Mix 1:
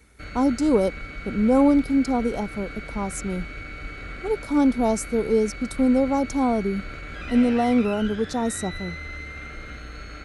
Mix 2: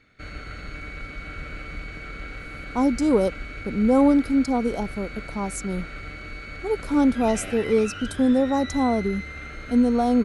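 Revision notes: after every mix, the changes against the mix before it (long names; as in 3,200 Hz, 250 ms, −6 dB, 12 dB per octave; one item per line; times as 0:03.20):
speech: entry +2.40 s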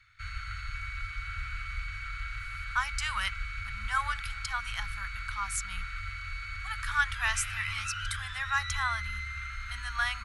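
speech: remove Butterworth band-reject 2,100 Hz, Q 0.63
master: add elliptic band-stop filter 100–1,200 Hz, stop band 60 dB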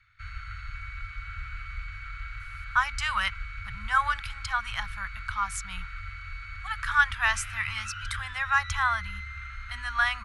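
speech +7.0 dB
master: add high-shelf EQ 4,200 Hz −11.5 dB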